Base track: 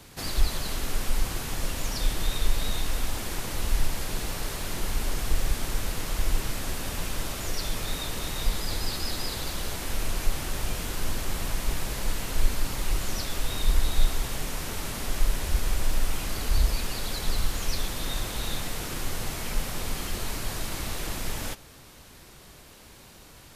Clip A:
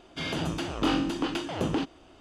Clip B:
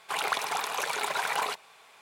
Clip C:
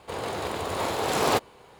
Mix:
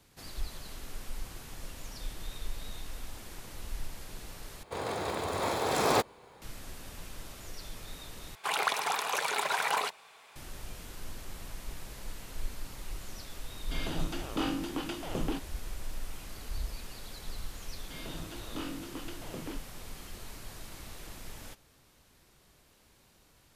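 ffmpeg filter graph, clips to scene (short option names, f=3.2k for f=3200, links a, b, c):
-filter_complex "[1:a]asplit=2[a][b];[0:a]volume=-13.5dB[c];[3:a]bandreject=f=2.9k:w=10[d];[b]bandreject=f=790:w=12[e];[c]asplit=3[f][g][h];[f]atrim=end=4.634[i];[d]atrim=end=1.79,asetpts=PTS-STARTPTS,volume=-3dB[j];[g]atrim=start=6.416:end=8.354[k];[2:a]atrim=end=2.01,asetpts=PTS-STARTPTS,volume=-0.5dB[l];[h]atrim=start=10.356[m];[a]atrim=end=2.2,asetpts=PTS-STARTPTS,volume=-6.5dB,afade=t=in:d=0.004:c=hsin,afade=t=out:st=2.196:d=0.004:c=hsin,adelay=13540[n];[e]atrim=end=2.2,asetpts=PTS-STARTPTS,volume=-13.5dB,afade=t=in:d=0.004:c=hsin,afade=t=out:st=2.196:d=0.004:c=hsin,adelay=17730[o];[i][j]acrossfade=d=0.004:c1=hsin:c2=hsin[p];[p][k]acrossfade=d=0.004:c1=hsin:c2=hsin[q];[q][l]acrossfade=d=0.004:c1=hsin:c2=hsin[r];[r][m]acrossfade=d=0.004:c1=hsin:c2=hsin[s];[s][n][o]amix=inputs=3:normalize=0"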